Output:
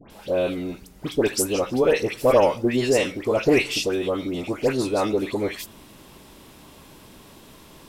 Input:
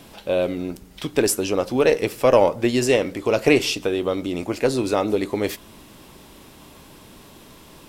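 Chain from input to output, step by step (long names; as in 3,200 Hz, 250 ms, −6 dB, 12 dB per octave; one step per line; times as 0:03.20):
all-pass dispersion highs, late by 104 ms, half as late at 1,700 Hz
level −1.5 dB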